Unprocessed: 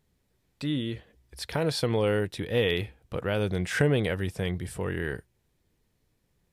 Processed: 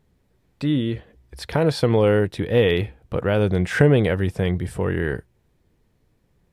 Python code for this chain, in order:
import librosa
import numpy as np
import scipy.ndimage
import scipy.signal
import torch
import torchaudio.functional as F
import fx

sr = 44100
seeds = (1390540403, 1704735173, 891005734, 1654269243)

y = fx.high_shelf(x, sr, hz=2400.0, db=-9.5)
y = y * 10.0 ** (8.5 / 20.0)